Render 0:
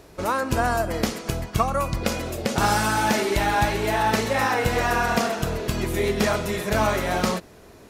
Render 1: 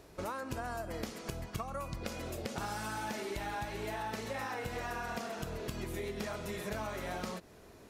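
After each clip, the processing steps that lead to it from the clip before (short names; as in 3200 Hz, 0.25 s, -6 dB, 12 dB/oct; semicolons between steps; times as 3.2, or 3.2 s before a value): compressor 6:1, threshold -28 dBFS, peak gain reduction 12 dB; gain -8 dB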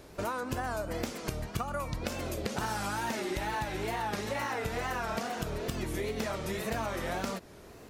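wow and flutter 130 cents; gain +5 dB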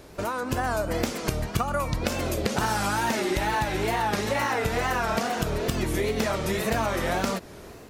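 AGC gain up to 4 dB; gain +4 dB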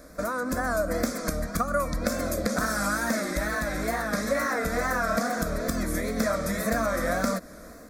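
fixed phaser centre 580 Hz, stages 8; gain +2.5 dB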